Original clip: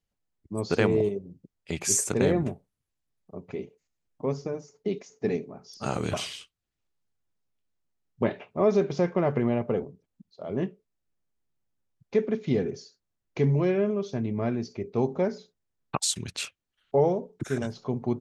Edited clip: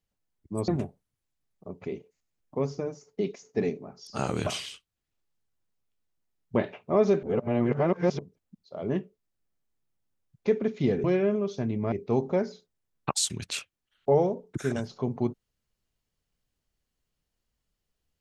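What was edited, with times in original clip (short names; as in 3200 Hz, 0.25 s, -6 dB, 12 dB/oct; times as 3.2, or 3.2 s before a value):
0.68–2.35 cut
8.9–9.86 reverse
12.71–13.59 cut
14.47–14.78 cut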